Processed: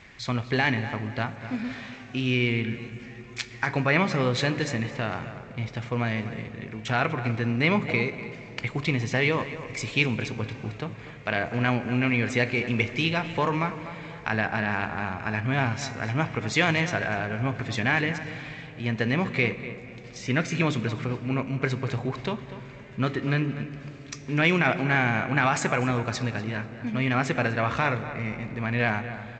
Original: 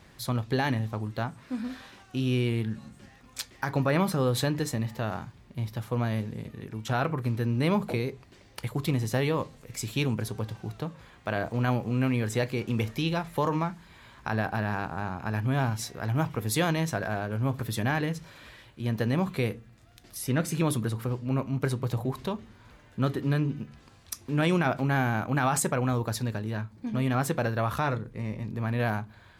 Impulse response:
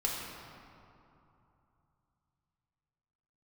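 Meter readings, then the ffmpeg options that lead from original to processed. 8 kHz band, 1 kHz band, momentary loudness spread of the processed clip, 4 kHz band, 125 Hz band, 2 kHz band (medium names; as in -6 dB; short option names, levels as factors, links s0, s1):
-3.5 dB, +2.5 dB, 13 LU, +5.0 dB, 0.0 dB, +8.5 dB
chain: -filter_complex "[0:a]equalizer=f=2200:t=o:w=0.78:g=12.5,asplit=2[s0][s1];[s1]adelay=245,lowpass=f=3000:p=1,volume=0.224,asplit=2[s2][s3];[s3]adelay=245,lowpass=f=3000:p=1,volume=0.32,asplit=2[s4][s5];[s5]adelay=245,lowpass=f=3000:p=1,volume=0.32[s6];[s0][s2][s4][s6]amix=inputs=4:normalize=0,asplit=2[s7][s8];[1:a]atrim=start_sample=2205,asetrate=23373,aresample=44100[s9];[s8][s9]afir=irnorm=-1:irlink=0,volume=0.0841[s10];[s7][s10]amix=inputs=2:normalize=0" -ar 16000 -c:a g722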